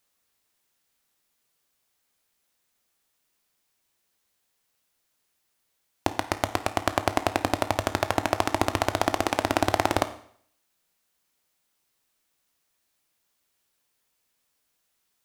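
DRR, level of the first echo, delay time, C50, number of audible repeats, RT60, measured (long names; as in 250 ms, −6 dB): 10.0 dB, no echo audible, no echo audible, 13.5 dB, no echo audible, 0.60 s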